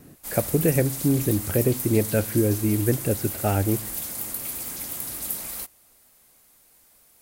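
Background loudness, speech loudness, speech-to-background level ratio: −30.0 LKFS, −24.0 LKFS, 6.0 dB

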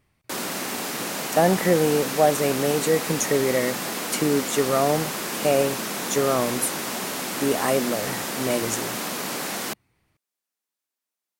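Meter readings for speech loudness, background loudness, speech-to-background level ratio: −24.0 LKFS, −28.0 LKFS, 4.0 dB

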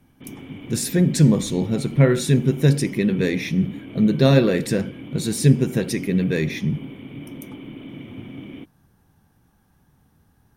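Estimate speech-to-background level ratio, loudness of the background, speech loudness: 18.0 dB, −38.0 LKFS, −20.0 LKFS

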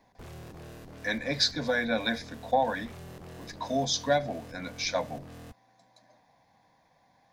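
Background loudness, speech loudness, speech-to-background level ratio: −47.0 LKFS, −30.0 LKFS, 17.0 dB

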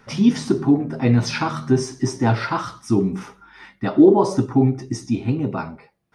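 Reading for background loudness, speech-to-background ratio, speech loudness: −34.5 LKFS, 14.5 dB, −20.0 LKFS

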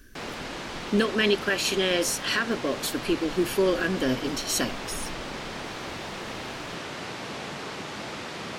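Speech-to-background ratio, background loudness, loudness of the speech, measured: 9.0 dB, −35.0 LKFS, −26.0 LKFS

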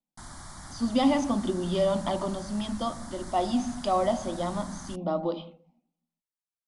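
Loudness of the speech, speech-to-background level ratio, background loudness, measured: −29.0 LKFS, 15.0 dB, −44.0 LKFS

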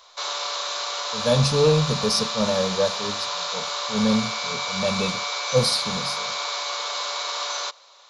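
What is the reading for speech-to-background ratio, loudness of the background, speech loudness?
3.0 dB, −26.5 LKFS, −23.5 LKFS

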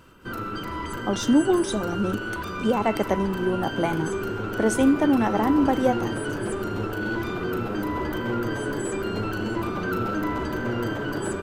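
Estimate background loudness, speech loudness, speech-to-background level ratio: −29.0 LKFS, −24.0 LKFS, 5.0 dB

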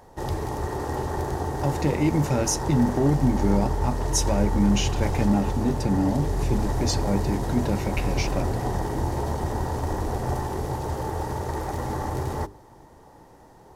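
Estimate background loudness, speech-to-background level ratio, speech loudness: −28.5 LKFS, 3.0 dB, −25.5 LKFS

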